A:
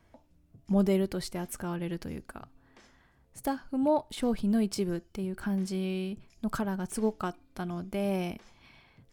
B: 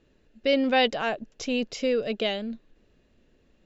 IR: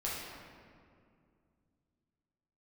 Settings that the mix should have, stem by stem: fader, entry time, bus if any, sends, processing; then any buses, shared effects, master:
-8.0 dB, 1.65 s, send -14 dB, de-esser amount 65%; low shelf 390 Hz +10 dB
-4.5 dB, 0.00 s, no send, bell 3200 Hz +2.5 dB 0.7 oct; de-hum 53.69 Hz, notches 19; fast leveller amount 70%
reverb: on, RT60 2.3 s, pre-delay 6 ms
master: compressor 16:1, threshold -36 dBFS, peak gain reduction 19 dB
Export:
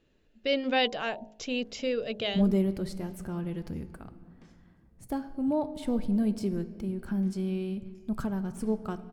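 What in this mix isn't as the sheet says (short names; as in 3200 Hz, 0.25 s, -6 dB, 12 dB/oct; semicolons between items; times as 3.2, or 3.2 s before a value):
stem B: missing fast leveller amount 70%; master: missing compressor 16:1, threshold -36 dBFS, peak gain reduction 19 dB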